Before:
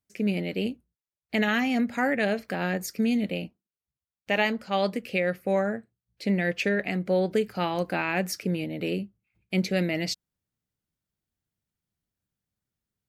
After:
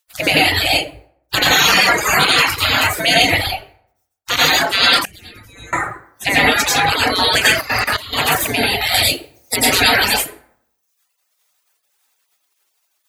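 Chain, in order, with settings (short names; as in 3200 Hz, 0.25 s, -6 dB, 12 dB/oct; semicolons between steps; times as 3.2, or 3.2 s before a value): 7.45–7.85 spectral repair 1400–7500 Hz after; 8.94–9.56 resonant high shelf 2400 Hz +12.5 dB, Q 3; spectral gate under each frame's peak -25 dB weak; plate-style reverb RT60 0.7 s, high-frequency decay 0.55×, pre-delay 75 ms, DRR -6.5 dB; reverb removal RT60 0.76 s; 5.05–5.73 passive tone stack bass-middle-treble 10-0-1; 7.61–8.13 level quantiser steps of 15 dB; maximiser +29 dB; gain -1 dB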